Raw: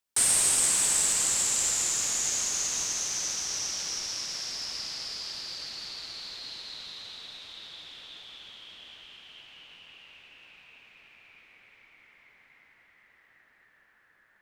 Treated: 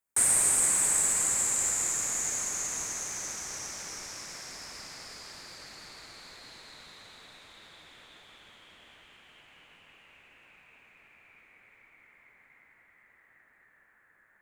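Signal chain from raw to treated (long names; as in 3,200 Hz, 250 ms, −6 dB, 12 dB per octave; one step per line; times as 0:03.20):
flat-topped bell 4,000 Hz −11 dB 1.3 octaves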